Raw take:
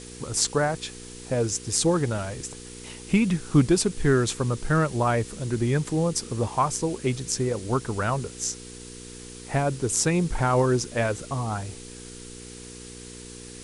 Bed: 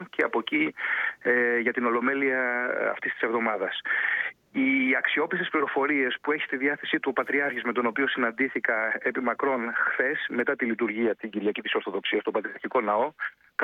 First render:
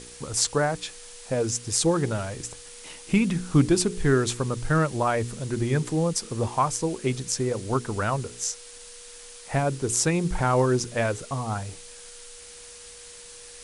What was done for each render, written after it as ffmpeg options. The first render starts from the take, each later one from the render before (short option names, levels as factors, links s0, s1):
-af "bandreject=f=60:t=h:w=4,bandreject=f=120:t=h:w=4,bandreject=f=180:t=h:w=4,bandreject=f=240:t=h:w=4,bandreject=f=300:t=h:w=4,bandreject=f=360:t=h:w=4,bandreject=f=420:t=h:w=4"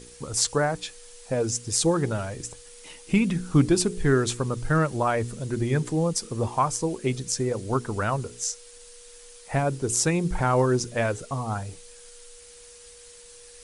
-af "afftdn=nr=6:nf=-45"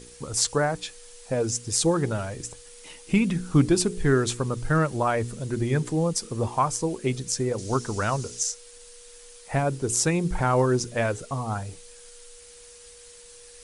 -filter_complex "[0:a]asettb=1/sr,asplit=3[s0][s1][s2];[s0]atrim=end=7.584[s3];[s1]atrim=start=7.58:end=8.43,asetpts=PTS-STARTPTS,afade=t=in:d=0.004:c=qsin,afade=t=out:st=0.846:d=0.004:c=qsin,equalizer=f=5900:t=o:w=1:g=11.5[s4];[s2]atrim=start=8.426[s5];[s3][s4]acrossfade=d=0.004:c1=hsin:c2=qsin[s6];[s6][s5]acrossfade=d=0.004:c1=qsin:c2=hsin"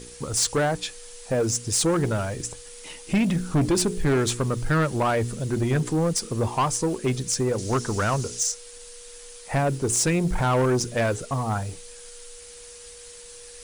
-filter_complex "[0:a]asplit=2[s0][s1];[s1]acrusher=bits=5:mode=log:mix=0:aa=0.000001,volume=0.631[s2];[s0][s2]amix=inputs=2:normalize=0,asoftclip=type=tanh:threshold=0.15"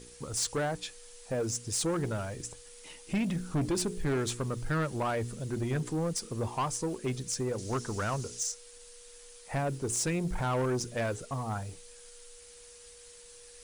-af "volume=0.376"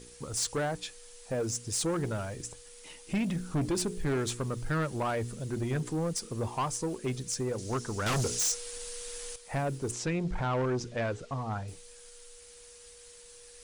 -filter_complex "[0:a]asettb=1/sr,asplit=3[s0][s1][s2];[s0]atrim=end=8.064[s3];[s1]atrim=start=8.06:end=9.36,asetpts=PTS-STARTPTS,afade=t=in:d=0.004:c=qsin,afade=t=out:st=1.296:d=0.004:c=qsin,aeval=exprs='0.0562*sin(PI/2*2.24*val(0)/0.0562)':c=same[s4];[s2]atrim=start=9.356[s5];[s3][s4]acrossfade=d=0.004:c1=hsin:c2=qsin[s6];[s6][s5]acrossfade=d=0.004:c1=qsin:c2=hsin,asettb=1/sr,asplit=3[s7][s8][s9];[s7]atrim=end=9.914[s10];[s8]atrim=start=9.91:end=11.68,asetpts=PTS-STARTPTS,afade=t=in:d=0.004:c=qsin,afade=t=out:st=1.766:d=0.004:c=qsin,lowpass=4800[s11];[s9]atrim=start=11.676[s12];[s10][s11]acrossfade=d=0.004:c1=hsin:c2=qsin[s13];[s13][s12]acrossfade=d=0.004:c1=qsin:c2=hsin"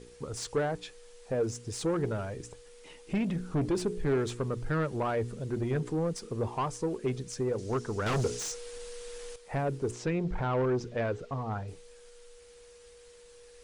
-af "lowpass=f=2700:p=1,equalizer=f=430:w=3.5:g=5.5"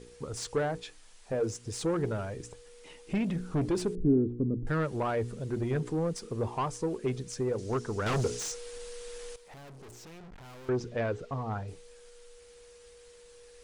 -filter_complex "[0:a]asettb=1/sr,asplit=3[s0][s1][s2];[s0]atrim=end=0.584[s3];[s1]atrim=start=0.58:end=1.66,asetpts=PTS-STARTPTS,afade=t=in:d=0.004:c=qsin,afade=t=out:st=1.076:d=0.004:c=qsin,bandreject=f=60:t=h:w=6,bandreject=f=120:t=h:w=6,bandreject=f=180:t=h:w=6,bandreject=f=240:t=h:w=6,bandreject=f=300:t=h:w=6,bandreject=f=360:t=h:w=6,bandreject=f=420:t=h:w=6,bandreject=f=480:t=h:w=6,bandreject=f=540:t=h:w=6[s4];[s2]atrim=start=1.656[s5];[s3][s4]acrossfade=d=0.004:c1=hsin:c2=qsin[s6];[s6][s5]acrossfade=d=0.004:c1=qsin:c2=hsin,asettb=1/sr,asplit=3[s7][s8][s9];[s7]atrim=end=3.954[s10];[s8]atrim=start=3.95:end=4.67,asetpts=PTS-STARTPTS,afade=t=in:d=0.004:c=qsin,afade=t=out:st=0.716:d=0.004:c=qsin,lowpass=f=280:t=q:w=3.4[s11];[s9]atrim=start=4.666[s12];[s10][s11]acrossfade=d=0.004:c1=hsin:c2=qsin[s13];[s13][s12]acrossfade=d=0.004:c1=qsin:c2=hsin,asettb=1/sr,asplit=3[s14][s15][s16];[s14]atrim=end=9.364[s17];[s15]atrim=start=9.36:end=10.69,asetpts=PTS-STARTPTS,afade=t=in:d=0.004:c=qsin,afade=t=out:st=1.326:d=0.004:c=qsin,aeval=exprs='(tanh(251*val(0)+0.35)-tanh(0.35))/251':c=same[s18];[s16]atrim=start=10.686[s19];[s17][s18]acrossfade=d=0.004:c1=hsin:c2=qsin[s20];[s20][s19]acrossfade=d=0.004:c1=qsin:c2=hsin"